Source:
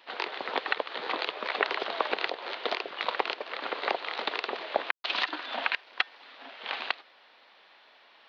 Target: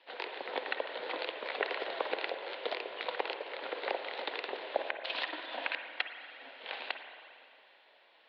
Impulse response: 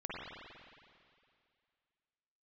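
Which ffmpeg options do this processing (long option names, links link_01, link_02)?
-filter_complex "[0:a]highpass=frequency=170:width=0.5412,highpass=frequency=170:width=1.3066,equalizer=frequency=220:width_type=q:width=4:gain=-6,equalizer=frequency=520:width_type=q:width=4:gain=6,equalizer=frequency=1200:width_type=q:width=4:gain=-7,lowpass=frequency=4500:width=0.5412,lowpass=frequency=4500:width=1.3066,asplit=2[link_01][link_02];[1:a]atrim=start_sample=2205[link_03];[link_02][link_03]afir=irnorm=-1:irlink=0,volume=-5.5dB[link_04];[link_01][link_04]amix=inputs=2:normalize=0,volume=-8.5dB"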